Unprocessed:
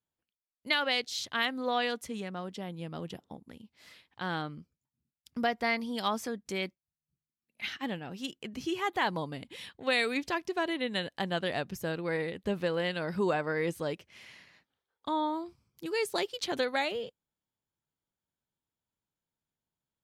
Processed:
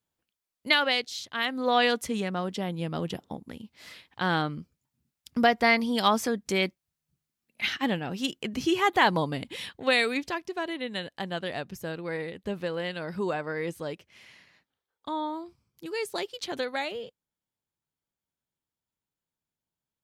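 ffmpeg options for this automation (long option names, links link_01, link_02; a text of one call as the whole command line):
ffmpeg -i in.wav -af "volume=18dB,afade=type=out:start_time=0.74:duration=0.53:silence=0.316228,afade=type=in:start_time=1.27:duration=0.58:silence=0.251189,afade=type=out:start_time=9.48:duration=0.93:silence=0.354813" out.wav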